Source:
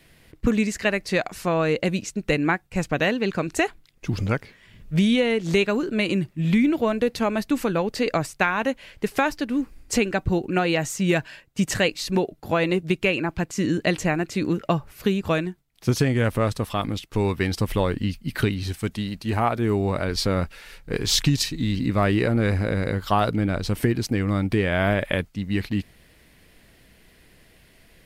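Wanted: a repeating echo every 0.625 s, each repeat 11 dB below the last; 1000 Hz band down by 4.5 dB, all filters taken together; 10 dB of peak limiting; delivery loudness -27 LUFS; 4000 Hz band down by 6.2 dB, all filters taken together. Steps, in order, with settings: bell 1000 Hz -6 dB; bell 4000 Hz -8 dB; limiter -17.5 dBFS; feedback echo 0.625 s, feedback 28%, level -11 dB; gain +1 dB

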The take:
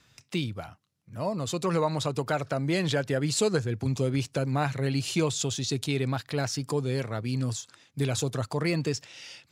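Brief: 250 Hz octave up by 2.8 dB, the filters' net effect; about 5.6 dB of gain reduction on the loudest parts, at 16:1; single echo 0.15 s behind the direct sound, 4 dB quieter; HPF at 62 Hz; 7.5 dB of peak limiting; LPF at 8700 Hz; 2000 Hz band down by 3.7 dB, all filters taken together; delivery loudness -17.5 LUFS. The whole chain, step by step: HPF 62 Hz; LPF 8700 Hz; bell 250 Hz +4 dB; bell 2000 Hz -5 dB; compressor 16:1, threshold -25 dBFS; limiter -23 dBFS; echo 0.15 s -4 dB; gain +14.5 dB

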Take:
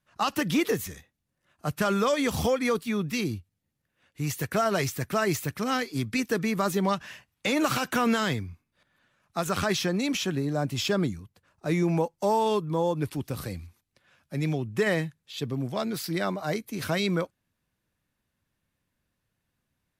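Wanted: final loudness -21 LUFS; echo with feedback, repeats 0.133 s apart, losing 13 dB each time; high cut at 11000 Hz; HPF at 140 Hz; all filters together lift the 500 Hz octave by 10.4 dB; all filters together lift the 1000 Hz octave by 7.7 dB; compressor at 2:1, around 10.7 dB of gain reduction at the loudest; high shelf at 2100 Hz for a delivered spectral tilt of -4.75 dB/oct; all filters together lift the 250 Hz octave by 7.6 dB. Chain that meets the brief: HPF 140 Hz; LPF 11000 Hz; bell 250 Hz +7.5 dB; bell 500 Hz +9 dB; bell 1000 Hz +5 dB; high shelf 2100 Hz +7 dB; compressor 2:1, threshold -31 dBFS; feedback echo 0.133 s, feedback 22%, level -13 dB; gain +7.5 dB

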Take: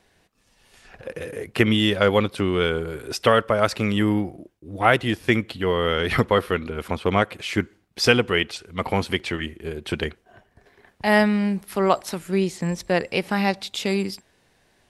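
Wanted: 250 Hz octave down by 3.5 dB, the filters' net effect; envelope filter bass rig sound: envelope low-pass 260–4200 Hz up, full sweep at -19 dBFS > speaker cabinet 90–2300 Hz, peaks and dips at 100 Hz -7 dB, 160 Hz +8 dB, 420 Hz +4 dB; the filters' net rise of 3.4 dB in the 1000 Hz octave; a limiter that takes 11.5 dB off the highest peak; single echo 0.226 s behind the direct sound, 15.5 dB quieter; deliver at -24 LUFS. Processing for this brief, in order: bell 250 Hz -8 dB; bell 1000 Hz +5 dB; limiter -11 dBFS; echo 0.226 s -15.5 dB; envelope low-pass 260–4200 Hz up, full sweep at -19 dBFS; speaker cabinet 90–2300 Hz, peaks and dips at 100 Hz -7 dB, 160 Hz +8 dB, 420 Hz +4 dB

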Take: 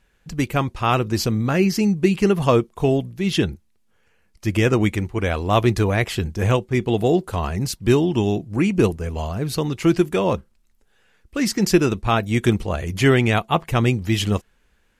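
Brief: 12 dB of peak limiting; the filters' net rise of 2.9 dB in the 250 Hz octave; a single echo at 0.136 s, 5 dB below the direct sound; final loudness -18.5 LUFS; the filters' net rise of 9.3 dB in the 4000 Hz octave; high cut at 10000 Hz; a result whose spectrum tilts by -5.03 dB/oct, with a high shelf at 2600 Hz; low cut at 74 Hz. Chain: HPF 74 Hz; LPF 10000 Hz; bell 250 Hz +4 dB; high shelf 2600 Hz +4.5 dB; bell 4000 Hz +8.5 dB; limiter -10.5 dBFS; echo 0.136 s -5 dB; gain +2 dB

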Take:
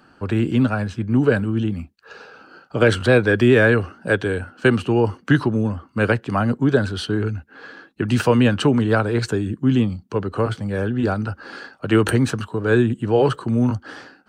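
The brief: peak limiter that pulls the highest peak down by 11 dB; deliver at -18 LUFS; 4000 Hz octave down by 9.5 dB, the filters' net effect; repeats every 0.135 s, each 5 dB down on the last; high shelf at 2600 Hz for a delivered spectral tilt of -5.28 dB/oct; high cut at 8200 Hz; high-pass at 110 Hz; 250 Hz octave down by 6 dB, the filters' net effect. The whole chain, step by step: HPF 110 Hz; LPF 8200 Hz; bell 250 Hz -7 dB; high shelf 2600 Hz -8.5 dB; bell 4000 Hz -6 dB; limiter -16.5 dBFS; feedback echo 0.135 s, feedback 56%, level -5 dB; gain +8 dB

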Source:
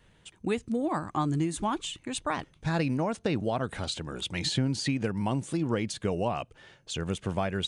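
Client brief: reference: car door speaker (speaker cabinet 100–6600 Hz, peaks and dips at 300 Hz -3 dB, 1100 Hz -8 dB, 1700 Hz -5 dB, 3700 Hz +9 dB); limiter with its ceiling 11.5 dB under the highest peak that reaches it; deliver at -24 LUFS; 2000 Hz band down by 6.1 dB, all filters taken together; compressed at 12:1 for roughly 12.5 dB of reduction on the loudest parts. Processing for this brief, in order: bell 2000 Hz -5.5 dB; compressor 12:1, threshold -36 dBFS; limiter -36.5 dBFS; speaker cabinet 100–6600 Hz, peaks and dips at 300 Hz -3 dB, 1100 Hz -8 dB, 1700 Hz -5 dB, 3700 Hz +9 dB; gain +21.5 dB

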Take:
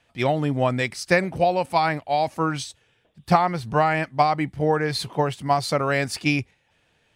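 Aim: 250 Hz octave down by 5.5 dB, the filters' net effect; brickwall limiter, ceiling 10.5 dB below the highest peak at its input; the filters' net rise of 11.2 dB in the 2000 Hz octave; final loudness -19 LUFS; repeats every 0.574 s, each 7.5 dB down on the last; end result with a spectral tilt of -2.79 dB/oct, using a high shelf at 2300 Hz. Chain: bell 250 Hz -9 dB; bell 2000 Hz +9 dB; high shelf 2300 Hz +9 dB; limiter -8 dBFS; feedback echo 0.574 s, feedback 42%, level -7.5 dB; gain +1 dB

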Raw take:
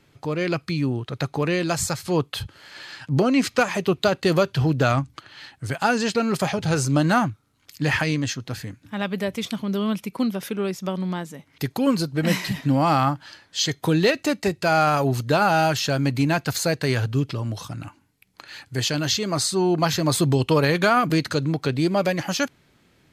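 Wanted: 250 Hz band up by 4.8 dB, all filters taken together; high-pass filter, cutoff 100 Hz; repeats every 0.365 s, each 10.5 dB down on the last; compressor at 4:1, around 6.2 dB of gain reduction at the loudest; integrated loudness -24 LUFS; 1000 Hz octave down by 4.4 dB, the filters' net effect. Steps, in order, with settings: HPF 100 Hz; bell 250 Hz +7 dB; bell 1000 Hz -7 dB; compressor 4:1, threshold -18 dBFS; feedback echo 0.365 s, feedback 30%, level -10.5 dB

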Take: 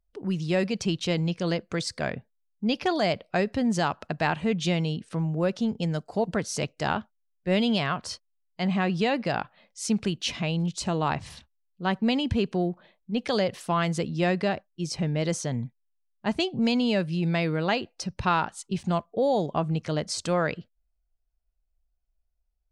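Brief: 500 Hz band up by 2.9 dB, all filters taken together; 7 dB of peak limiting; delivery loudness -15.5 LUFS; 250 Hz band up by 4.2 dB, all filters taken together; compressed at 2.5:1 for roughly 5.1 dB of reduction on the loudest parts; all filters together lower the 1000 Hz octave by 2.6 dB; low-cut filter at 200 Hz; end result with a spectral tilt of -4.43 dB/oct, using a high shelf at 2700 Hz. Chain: HPF 200 Hz; bell 250 Hz +8 dB; bell 500 Hz +3 dB; bell 1000 Hz -7 dB; high shelf 2700 Hz +8.5 dB; compressor 2.5:1, threshold -23 dBFS; gain +13.5 dB; limiter -4.5 dBFS

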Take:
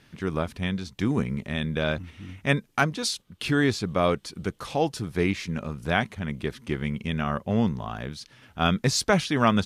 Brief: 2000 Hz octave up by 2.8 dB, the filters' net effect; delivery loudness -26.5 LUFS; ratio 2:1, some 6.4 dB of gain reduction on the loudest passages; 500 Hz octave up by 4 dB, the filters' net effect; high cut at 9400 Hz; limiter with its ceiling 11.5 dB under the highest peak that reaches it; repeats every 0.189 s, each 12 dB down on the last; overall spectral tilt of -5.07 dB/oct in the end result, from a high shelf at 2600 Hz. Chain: LPF 9400 Hz; bell 500 Hz +5 dB; bell 2000 Hz +6.5 dB; high shelf 2600 Hz -7.5 dB; compressor 2:1, threshold -26 dBFS; limiter -21 dBFS; feedback echo 0.189 s, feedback 25%, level -12 dB; gain +6.5 dB

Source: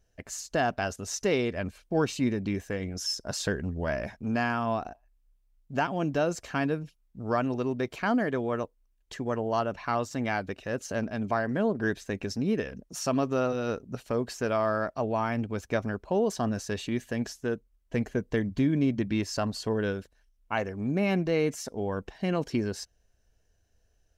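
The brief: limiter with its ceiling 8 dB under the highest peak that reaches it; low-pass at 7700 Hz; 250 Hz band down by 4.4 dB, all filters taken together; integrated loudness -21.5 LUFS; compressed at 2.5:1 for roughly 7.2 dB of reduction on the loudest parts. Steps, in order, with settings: LPF 7700 Hz; bell 250 Hz -5.5 dB; compressor 2.5:1, threshold -34 dBFS; gain +17.5 dB; limiter -10 dBFS

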